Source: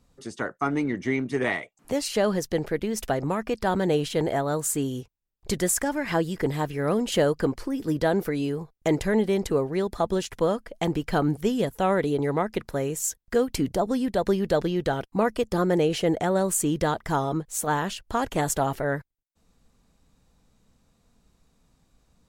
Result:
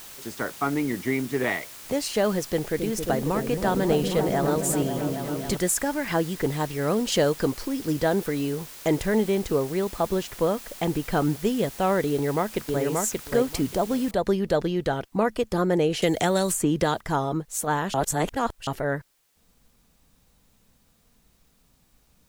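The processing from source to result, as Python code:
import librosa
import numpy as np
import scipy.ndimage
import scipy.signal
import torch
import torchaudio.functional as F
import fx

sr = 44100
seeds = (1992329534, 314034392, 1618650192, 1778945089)

y = fx.lowpass(x, sr, hz=5100.0, slope=12, at=(0.68, 1.46))
y = fx.echo_opening(y, sr, ms=270, hz=400, octaves=1, feedback_pct=70, wet_db=-3, at=(2.44, 5.57))
y = fx.peak_eq(y, sr, hz=5300.0, db=7.0, octaves=0.98, at=(6.6, 7.97))
y = fx.high_shelf(y, sr, hz=5400.0, db=-7.5, at=(9.35, 11.18))
y = fx.echo_throw(y, sr, start_s=12.1, length_s=0.74, ms=580, feedback_pct=15, wet_db=-2.5)
y = fx.noise_floor_step(y, sr, seeds[0], at_s=14.11, before_db=-43, after_db=-68, tilt_db=0.0)
y = fx.band_squash(y, sr, depth_pct=100, at=(16.02, 17.01))
y = fx.edit(y, sr, fx.reverse_span(start_s=17.94, length_s=0.73), tone=tone)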